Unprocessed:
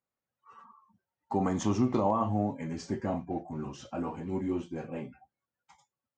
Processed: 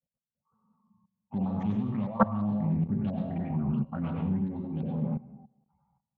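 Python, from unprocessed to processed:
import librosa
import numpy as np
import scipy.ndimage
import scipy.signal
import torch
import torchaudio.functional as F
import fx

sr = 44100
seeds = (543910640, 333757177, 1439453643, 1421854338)

p1 = fx.wiener(x, sr, points=25)
p2 = fx.rider(p1, sr, range_db=3, speed_s=0.5)
p3 = fx.filter_lfo_lowpass(p2, sr, shape='saw_up', hz=2.9, low_hz=470.0, high_hz=4100.0, q=5.1)
p4 = fx.hum_notches(p3, sr, base_hz=60, count=8)
p5 = fx.rev_plate(p4, sr, seeds[0], rt60_s=0.65, hf_ratio=1.0, predelay_ms=80, drr_db=1.5)
p6 = fx.env_lowpass(p5, sr, base_hz=670.0, full_db=-23.5)
p7 = p6 + fx.echo_tape(p6, sr, ms=111, feedback_pct=48, wet_db=-19, lp_hz=3200.0, drive_db=15.0, wow_cents=5, dry=0)
p8 = fx.level_steps(p7, sr, step_db=19)
p9 = fx.low_shelf_res(p8, sr, hz=260.0, db=9.5, q=3.0)
y = fx.doppler_dist(p9, sr, depth_ms=0.25)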